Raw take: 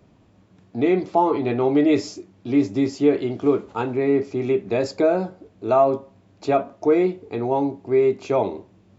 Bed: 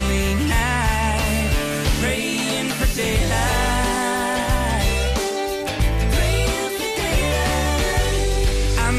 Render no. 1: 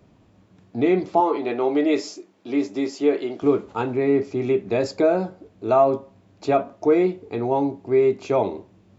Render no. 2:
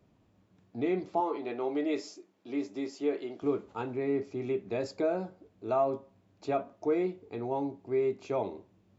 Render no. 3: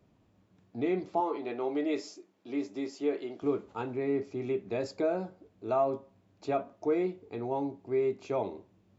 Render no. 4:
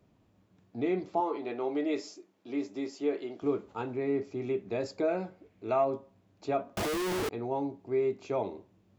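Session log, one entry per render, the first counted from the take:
0:01.20–0:03.42: high-pass filter 320 Hz
level −11 dB
no processing that can be heard
0:05.08–0:05.85: parametric band 2,200 Hz +9.5 dB 0.67 octaves; 0:06.77–0:07.29: sign of each sample alone

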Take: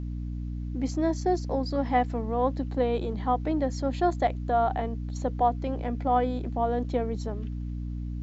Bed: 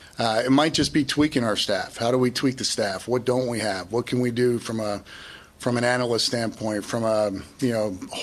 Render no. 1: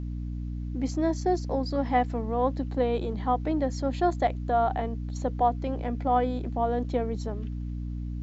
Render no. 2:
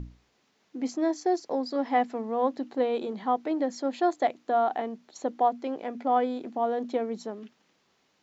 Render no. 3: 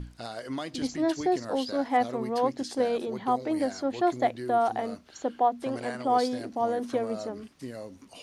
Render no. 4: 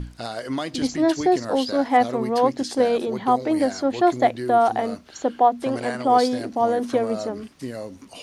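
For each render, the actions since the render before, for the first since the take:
no processing that can be heard
mains-hum notches 60/120/180/240/300 Hz
mix in bed −16 dB
level +7 dB

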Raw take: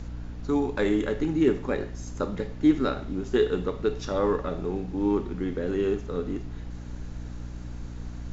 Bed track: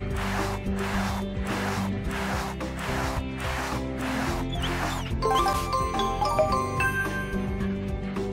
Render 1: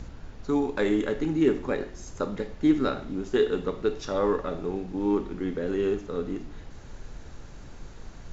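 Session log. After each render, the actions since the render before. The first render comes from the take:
hum removal 60 Hz, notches 6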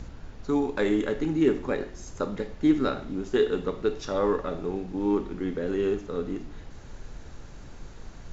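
no processing that can be heard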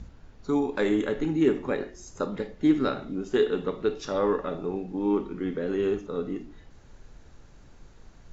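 noise reduction from a noise print 8 dB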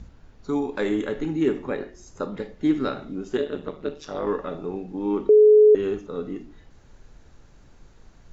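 0:01.64–0:02.37: high-shelf EQ 5,900 Hz −6.5 dB
0:03.37–0:04.27: amplitude modulation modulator 150 Hz, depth 70%
0:05.29–0:05.75: beep over 425 Hz −9.5 dBFS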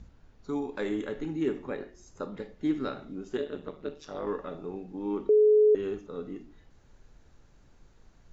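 level −7 dB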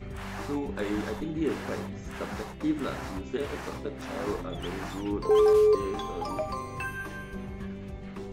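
mix in bed track −9.5 dB

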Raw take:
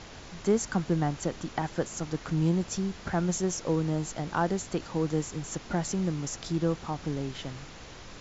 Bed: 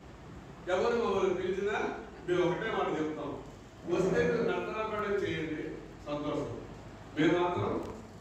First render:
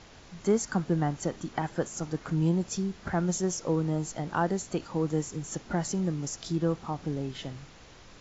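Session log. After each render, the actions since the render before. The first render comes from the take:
noise reduction from a noise print 6 dB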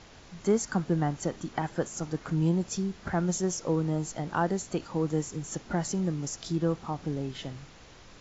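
no processing that can be heard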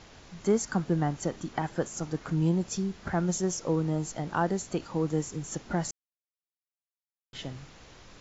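0:05.91–0:07.33: silence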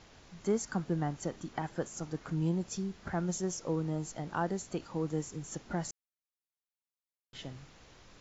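level −5.5 dB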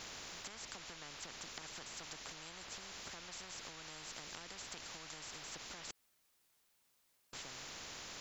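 downward compressor 4 to 1, threshold −40 dBFS, peak gain reduction 13 dB
every bin compressed towards the loudest bin 10 to 1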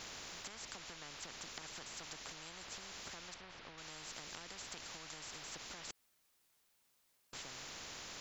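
0:03.34–0:03.78: high-frequency loss of the air 220 metres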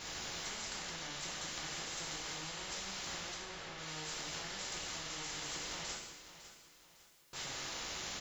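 repeating echo 554 ms, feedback 36%, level −13 dB
reverb whose tail is shaped and stops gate 330 ms falling, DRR −5 dB

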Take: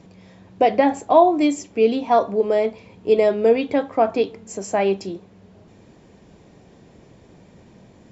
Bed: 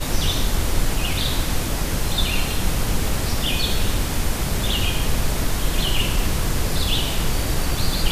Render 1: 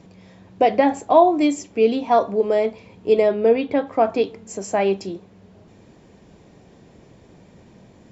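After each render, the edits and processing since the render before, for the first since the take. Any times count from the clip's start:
0:03.22–0:03.87: high-frequency loss of the air 110 metres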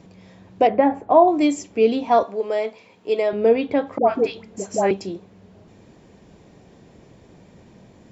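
0:00.67–0:01.28: low-pass filter 1,700 Hz
0:02.23–0:03.33: high-pass filter 660 Hz 6 dB per octave
0:03.98–0:04.91: all-pass dispersion highs, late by 99 ms, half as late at 810 Hz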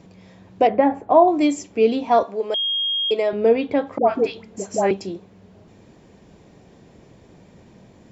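0:02.54–0:03.11: beep over 3,250 Hz −19.5 dBFS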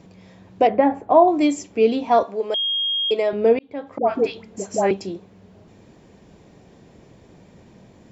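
0:03.59–0:04.20: fade in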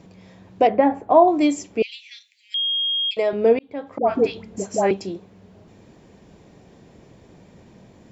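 0:01.82–0:03.17: Butterworth high-pass 2,000 Hz 72 dB per octave
0:04.08–0:04.68: low-shelf EQ 200 Hz +7.5 dB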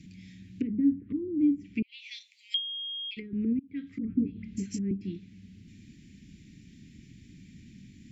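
treble cut that deepens with the level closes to 420 Hz, closed at −16.5 dBFS
elliptic band-stop filter 270–2,100 Hz, stop band 70 dB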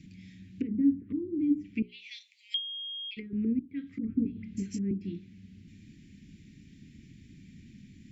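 high-shelf EQ 3,700 Hz −5 dB
mains-hum notches 60/120/180/240/300/360/420 Hz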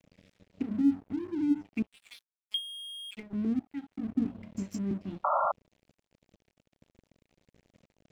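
dead-zone distortion −47 dBFS
0:05.24–0:05.52: sound drawn into the spectrogram noise 540–1,400 Hz −27 dBFS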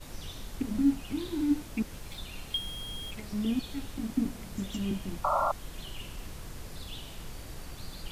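mix in bed −21 dB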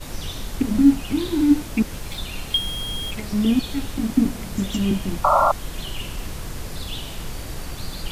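level +11 dB

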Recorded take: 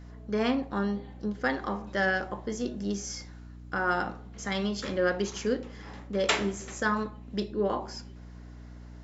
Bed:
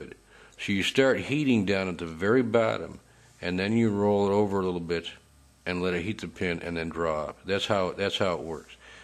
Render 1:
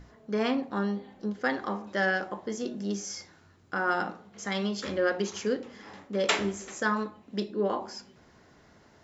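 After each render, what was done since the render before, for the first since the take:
mains-hum notches 60/120/180/240/300 Hz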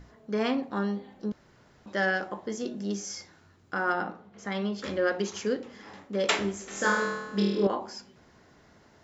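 0:01.32–0:01.86: fill with room tone
0:03.92–0:04.84: low-pass filter 2,200 Hz 6 dB per octave
0:06.68–0:07.67: flutter between parallel walls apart 4.3 metres, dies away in 1.1 s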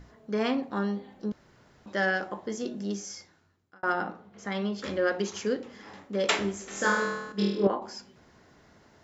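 0:02.82–0:03.83: fade out
0:07.32–0:07.82: multiband upward and downward expander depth 100%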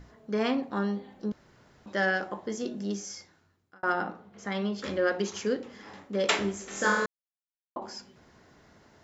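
0:07.06–0:07.76: silence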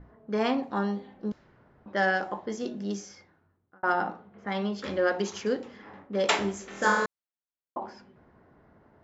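low-pass that shuts in the quiet parts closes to 1,200 Hz, open at −26 dBFS
dynamic equaliser 830 Hz, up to +6 dB, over −44 dBFS, Q 2.2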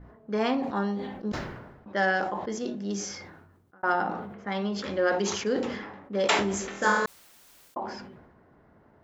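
level that may fall only so fast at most 49 dB per second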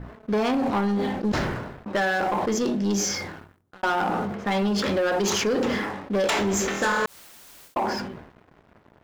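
downward compressor 16 to 1, threshold −27 dBFS, peak gain reduction 9.5 dB
leveller curve on the samples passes 3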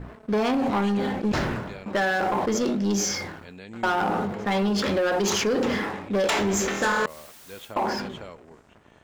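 mix in bed −15 dB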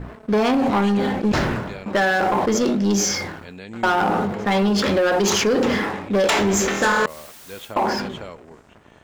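level +5 dB

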